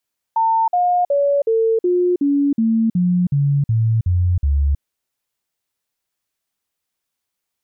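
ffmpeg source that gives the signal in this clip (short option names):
-f lavfi -i "aevalsrc='0.224*clip(min(mod(t,0.37),0.32-mod(t,0.37))/0.005,0,1)*sin(2*PI*900*pow(2,-floor(t/0.37)/3)*mod(t,0.37))':d=4.44:s=44100"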